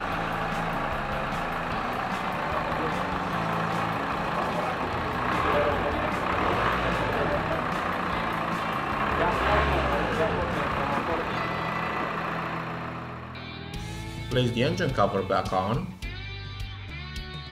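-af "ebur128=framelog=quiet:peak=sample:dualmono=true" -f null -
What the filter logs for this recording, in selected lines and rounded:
Integrated loudness:
  I:         -24.7 LUFS
  Threshold: -34.7 LUFS
Loudness range:
  LRA:         3.7 LU
  Threshold: -44.4 LUFS
  LRA low:   -26.7 LUFS
  LRA high:  -23.0 LUFS
Sample peak:
  Peak:       -9.8 dBFS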